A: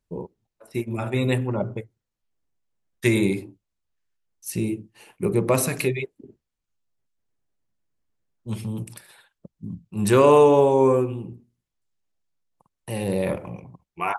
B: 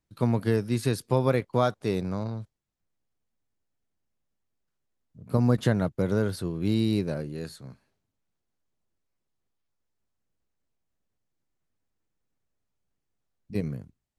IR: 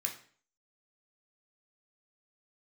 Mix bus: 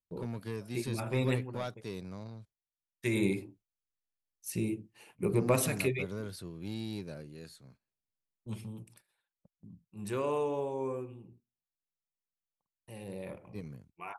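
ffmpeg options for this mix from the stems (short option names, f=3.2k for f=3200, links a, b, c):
-filter_complex "[0:a]volume=3.5dB,afade=t=out:st=1.3:d=0.24:silence=0.281838,afade=t=in:st=2.95:d=0.3:silence=0.237137,afade=t=out:st=8.31:d=0.55:silence=0.298538[a];[1:a]asoftclip=type=tanh:threshold=-17.5dB,adynamicequalizer=threshold=0.00447:dfrequency=1900:dqfactor=0.7:tfrequency=1900:tqfactor=0.7:attack=5:release=100:ratio=0.375:range=3:mode=boostabove:tftype=highshelf,volume=-12.5dB[b];[a][b]amix=inputs=2:normalize=0,agate=range=-11dB:threshold=-60dB:ratio=16:detection=peak,equalizer=f=2.4k:w=6.2:g=2.5"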